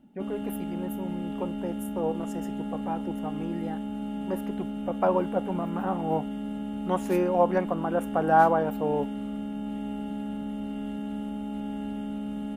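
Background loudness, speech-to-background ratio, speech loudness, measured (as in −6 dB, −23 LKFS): −34.0 LKFS, 5.0 dB, −29.0 LKFS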